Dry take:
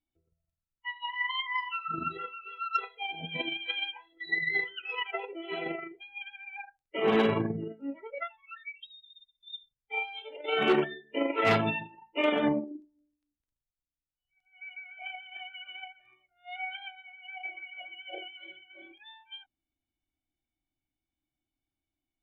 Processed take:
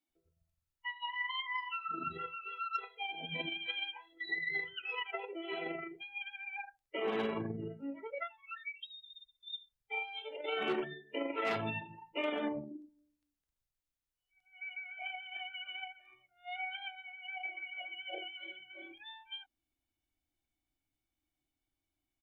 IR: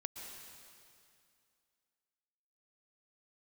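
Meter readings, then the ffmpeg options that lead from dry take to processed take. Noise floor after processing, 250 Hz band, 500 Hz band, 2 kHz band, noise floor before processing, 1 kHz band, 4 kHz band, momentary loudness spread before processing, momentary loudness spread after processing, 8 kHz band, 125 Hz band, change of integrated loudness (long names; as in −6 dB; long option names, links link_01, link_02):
below −85 dBFS, −9.5 dB, −8.5 dB, −5.5 dB, below −85 dBFS, −6.5 dB, −4.5 dB, 20 LU, 12 LU, can't be measured, −9.0 dB, −7.5 dB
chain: -filter_complex "[0:a]acompressor=threshold=-41dB:ratio=2,acrossover=split=190[link_01][link_02];[link_01]adelay=90[link_03];[link_03][link_02]amix=inputs=2:normalize=0,volume=1dB"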